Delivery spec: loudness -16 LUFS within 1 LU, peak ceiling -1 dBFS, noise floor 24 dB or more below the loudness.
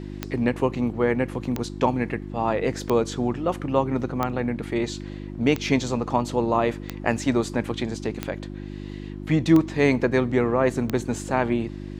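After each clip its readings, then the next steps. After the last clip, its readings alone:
clicks 9; hum 50 Hz; harmonics up to 350 Hz; hum level -33 dBFS; loudness -24.5 LUFS; peak -4.5 dBFS; loudness target -16.0 LUFS
-> de-click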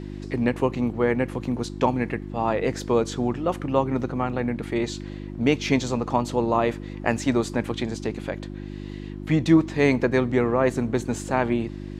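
clicks 0; hum 50 Hz; harmonics up to 350 Hz; hum level -33 dBFS
-> de-hum 50 Hz, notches 7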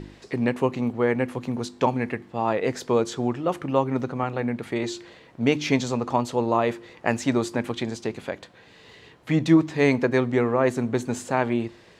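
hum none; loudness -25.0 LUFS; peak -5.0 dBFS; loudness target -16.0 LUFS
-> gain +9 dB; limiter -1 dBFS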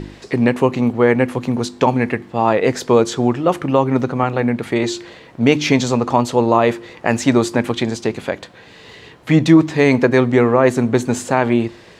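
loudness -16.5 LUFS; peak -1.0 dBFS; noise floor -43 dBFS

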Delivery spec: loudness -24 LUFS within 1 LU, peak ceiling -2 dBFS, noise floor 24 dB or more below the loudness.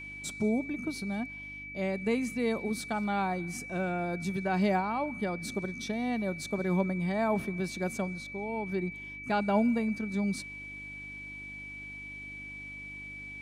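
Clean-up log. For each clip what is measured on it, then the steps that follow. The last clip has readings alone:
hum 50 Hz; harmonics up to 300 Hz; hum level -50 dBFS; steady tone 2300 Hz; tone level -41 dBFS; loudness -33.0 LUFS; peak -15.5 dBFS; loudness target -24.0 LUFS
-> de-hum 50 Hz, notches 6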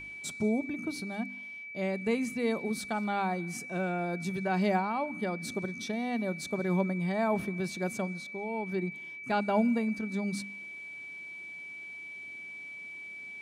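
hum none; steady tone 2300 Hz; tone level -41 dBFS
-> notch 2300 Hz, Q 30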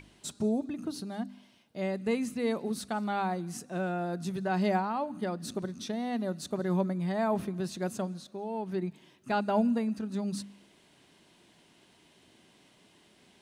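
steady tone none; loudness -32.5 LUFS; peak -17.0 dBFS; loudness target -24.0 LUFS
-> gain +8.5 dB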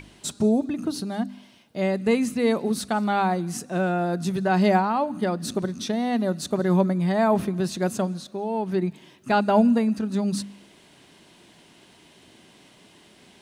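loudness -24.0 LUFS; peak -8.5 dBFS; noise floor -54 dBFS

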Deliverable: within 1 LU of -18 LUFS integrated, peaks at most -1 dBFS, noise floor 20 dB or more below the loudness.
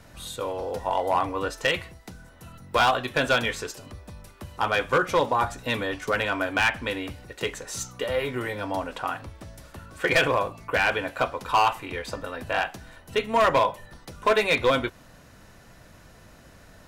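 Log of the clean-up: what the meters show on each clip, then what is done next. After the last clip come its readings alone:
clipped 0.7%; flat tops at -14.5 dBFS; loudness -25.5 LUFS; peak -14.5 dBFS; loudness target -18.0 LUFS
-> clip repair -14.5 dBFS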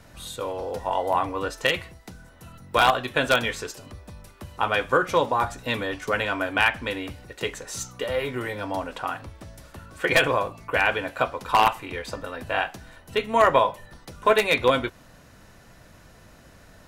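clipped 0.0%; loudness -24.5 LUFS; peak -5.5 dBFS; loudness target -18.0 LUFS
-> gain +6.5 dB; limiter -1 dBFS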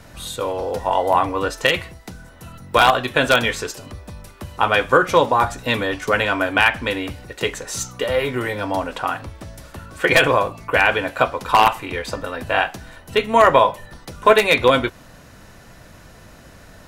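loudness -18.5 LUFS; peak -1.0 dBFS; noise floor -45 dBFS

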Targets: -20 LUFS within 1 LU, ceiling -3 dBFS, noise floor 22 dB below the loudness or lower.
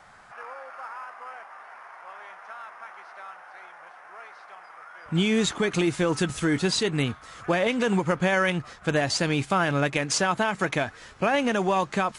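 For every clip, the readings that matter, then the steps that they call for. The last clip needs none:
loudness -25.0 LUFS; peak -12.0 dBFS; loudness target -20.0 LUFS
-> gain +5 dB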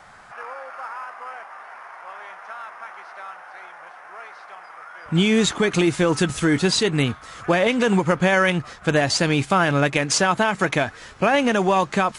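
loudness -20.0 LUFS; peak -7.0 dBFS; noise floor -44 dBFS

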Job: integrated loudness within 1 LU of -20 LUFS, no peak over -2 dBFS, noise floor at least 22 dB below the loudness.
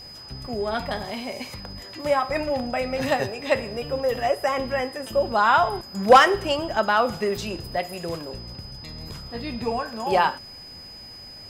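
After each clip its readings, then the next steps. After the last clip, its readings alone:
ticks 21/s; steady tone 5000 Hz; tone level -40 dBFS; loudness -23.5 LUFS; peak -5.0 dBFS; loudness target -20.0 LUFS
-> de-click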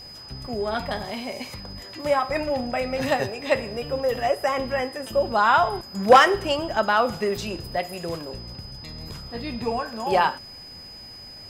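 ticks 0.35/s; steady tone 5000 Hz; tone level -40 dBFS
-> notch 5000 Hz, Q 30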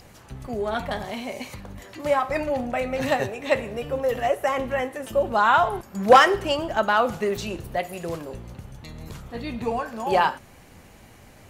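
steady tone none; loudness -23.5 LUFS; peak -2.5 dBFS; loudness target -20.0 LUFS
-> gain +3.5 dB; limiter -2 dBFS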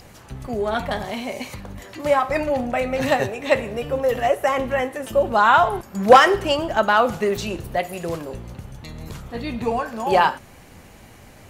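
loudness -20.5 LUFS; peak -2.0 dBFS; noise floor -46 dBFS

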